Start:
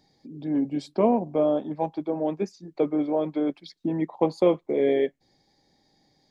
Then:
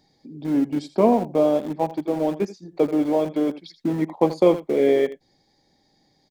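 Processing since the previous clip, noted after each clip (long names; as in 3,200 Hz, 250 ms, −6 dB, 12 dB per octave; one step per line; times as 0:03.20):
single-tap delay 82 ms −14 dB
in parallel at −10 dB: centre clipping without the shift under −28 dBFS
on the sum: level +1.5 dB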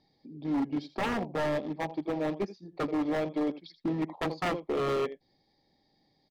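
Butterworth low-pass 5,200 Hz 36 dB per octave
wave folding −17 dBFS
notch filter 1,500 Hz, Q 7.2
level −6.5 dB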